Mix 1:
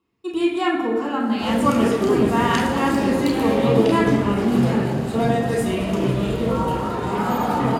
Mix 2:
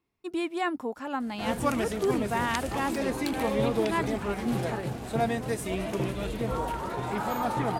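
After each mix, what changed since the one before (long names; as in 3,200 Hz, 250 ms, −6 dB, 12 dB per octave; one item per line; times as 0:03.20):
reverb: off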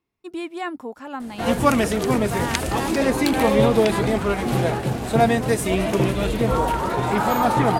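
background +10.0 dB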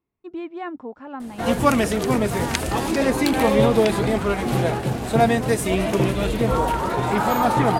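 speech: add head-to-tape spacing loss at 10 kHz 31 dB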